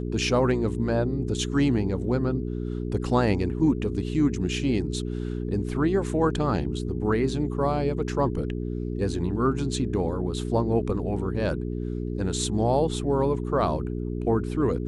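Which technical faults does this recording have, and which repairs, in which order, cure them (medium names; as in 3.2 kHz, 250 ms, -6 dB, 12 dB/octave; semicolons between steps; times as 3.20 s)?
hum 60 Hz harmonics 7 -30 dBFS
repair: de-hum 60 Hz, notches 7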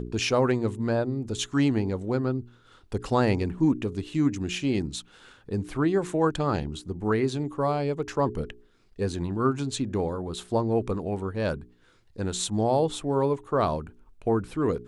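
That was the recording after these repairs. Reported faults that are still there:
nothing left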